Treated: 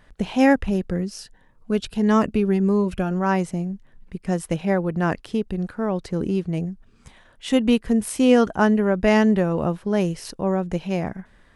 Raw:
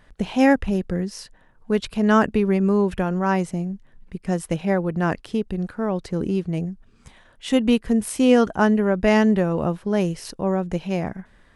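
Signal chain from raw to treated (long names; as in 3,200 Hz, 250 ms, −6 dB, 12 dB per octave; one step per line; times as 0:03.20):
0:00.98–0:03.11: phaser whose notches keep moving one way rising 1.6 Hz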